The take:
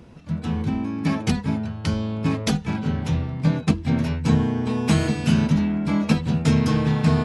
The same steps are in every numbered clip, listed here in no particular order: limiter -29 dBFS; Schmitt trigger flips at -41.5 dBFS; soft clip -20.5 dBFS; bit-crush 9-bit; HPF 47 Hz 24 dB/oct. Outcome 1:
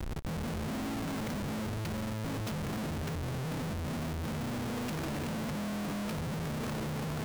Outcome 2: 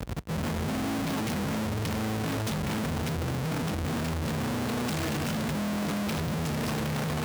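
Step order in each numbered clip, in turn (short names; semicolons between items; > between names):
soft clip > HPF > limiter > Schmitt trigger > bit-crush; Schmitt trigger > soft clip > limiter > bit-crush > HPF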